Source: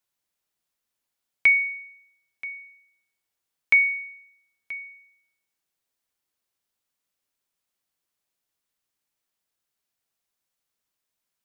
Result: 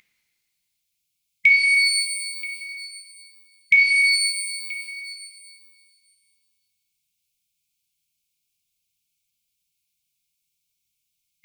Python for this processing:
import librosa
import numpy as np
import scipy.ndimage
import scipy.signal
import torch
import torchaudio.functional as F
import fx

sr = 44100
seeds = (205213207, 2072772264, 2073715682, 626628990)

y = x + 10.0 ** (-39.0 / 20.0) * np.sin(2.0 * np.pi * 2000.0 * np.arange(len(x)) / sr)
y = fx.brickwall_bandstop(y, sr, low_hz=190.0, high_hz=2100.0)
y = fx.rev_shimmer(y, sr, seeds[0], rt60_s=1.9, semitones=12, shimmer_db=-8, drr_db=-1.0)
y = F.gain(torch.from_numpy(y), 3.0).numpy()